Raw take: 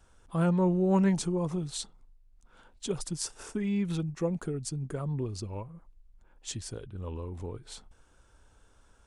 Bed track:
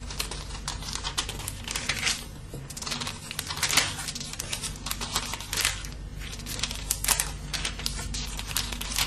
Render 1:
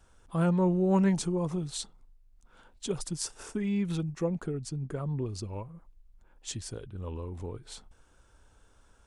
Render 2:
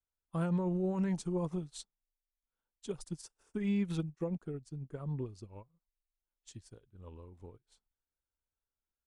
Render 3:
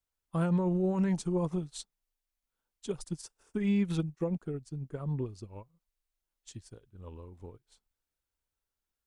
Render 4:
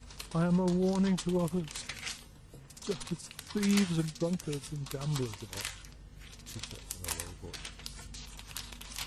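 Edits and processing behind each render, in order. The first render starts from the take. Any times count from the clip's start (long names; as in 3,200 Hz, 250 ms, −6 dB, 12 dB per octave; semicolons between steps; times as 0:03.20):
0:04.24–0:05.26: high-shelf EQ 7,200 Hz −10.5 dB
brickwall limiter −24 dBFS, peak gain reduction 10 dB; expander for the loud parts 2.5 to 1, over −52 dBFS
level +4 dB
mix in bed track −13 dB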